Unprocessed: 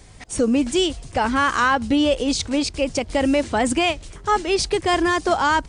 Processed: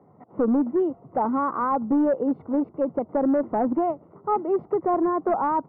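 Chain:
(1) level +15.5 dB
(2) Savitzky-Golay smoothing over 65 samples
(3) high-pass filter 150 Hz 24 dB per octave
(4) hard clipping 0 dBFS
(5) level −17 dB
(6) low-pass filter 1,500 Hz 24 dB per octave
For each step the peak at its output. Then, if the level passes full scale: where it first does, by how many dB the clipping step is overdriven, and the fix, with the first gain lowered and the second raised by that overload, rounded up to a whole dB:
+7.5, +5.5, +6.5, 0.0, −17.0, −15.5 dBFS
step 1, 6.5 dB
step 1 +8.5 dB, step 5 −10 dB

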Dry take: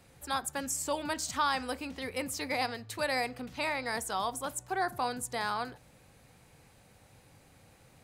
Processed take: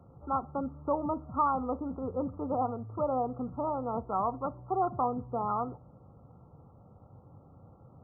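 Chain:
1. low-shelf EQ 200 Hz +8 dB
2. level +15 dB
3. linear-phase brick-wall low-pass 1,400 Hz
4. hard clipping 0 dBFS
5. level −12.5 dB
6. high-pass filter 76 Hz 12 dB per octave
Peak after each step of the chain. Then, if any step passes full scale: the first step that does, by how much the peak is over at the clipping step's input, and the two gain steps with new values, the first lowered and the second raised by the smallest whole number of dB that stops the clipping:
−17.5, −2.5, −4.5, −4.5, −17.0, −17.0 dBFS
no step passes full scale

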